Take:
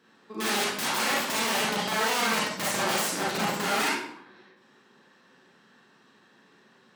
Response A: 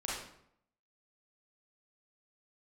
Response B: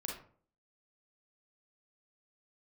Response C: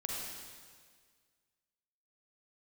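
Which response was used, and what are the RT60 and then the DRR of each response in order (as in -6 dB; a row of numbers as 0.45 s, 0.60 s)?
A; 0.70 s, 0.50 s, 1.8 s; -6.5 dB, -1.0 dB, -3.0 dB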